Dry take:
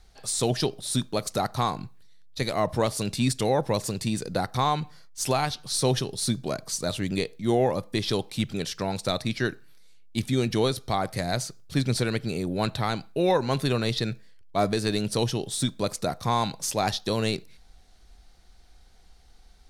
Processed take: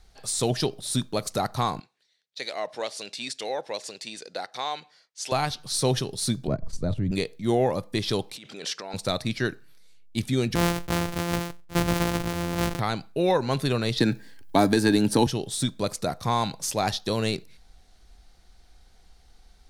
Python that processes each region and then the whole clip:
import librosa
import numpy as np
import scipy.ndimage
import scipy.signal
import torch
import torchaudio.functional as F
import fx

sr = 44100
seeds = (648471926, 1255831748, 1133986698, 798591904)

y = fx.chain(x, sr, fx.bandpass_edges(low_hz=640.0, high_hz=6200.0),
    fx.peak_eq(hz=1100.0, db=-8.5, octaves=0.9), at=(1.8, 5.32))
y = fx.chain(y, sr, fx.tilt_eq(slope=-4.5),
    fx.level_steps(step_db=12),
    fx.band_widen(depth_pct=40), at=(6.47, 7.12))
y = fx.chain(y, sr, fx.over_compress(threshold_db=-33.0, ratio=-1.0),
    fx.bandpass_edges(low_hz=390.0, high_hz=7600.0), at=(8.36, 8.94))
y = fx.chain(y, sr, fx.sample_sort(block=256),
    fx.sustainer(db_per_s=77.0), at=(10.55, 12.8))
y = fx.chain(y, sr, fx.high_shelf(hz=12000.0, db=11.5),
    fx.small_body(hz=(280.0, 860.0, 1600.0), ring_ms=35, db=13),
    fx.band_squash(depth_pct=70), at=(14.0, 15.27))